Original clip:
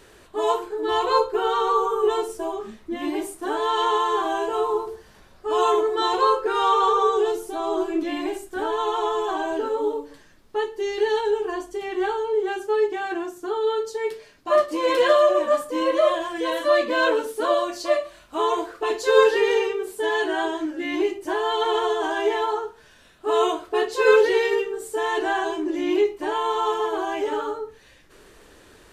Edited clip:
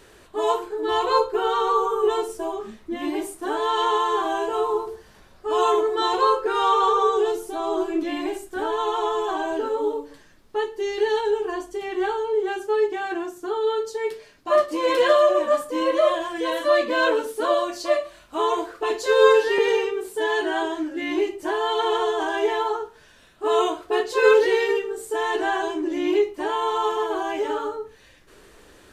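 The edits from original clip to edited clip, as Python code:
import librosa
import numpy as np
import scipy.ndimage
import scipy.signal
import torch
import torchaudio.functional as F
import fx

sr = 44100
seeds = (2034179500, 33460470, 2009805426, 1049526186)

y = fx.edit(x, sr, fx.stretch_span(start_s=19.06, length_s=0.35, factor=1.5), tone=tone)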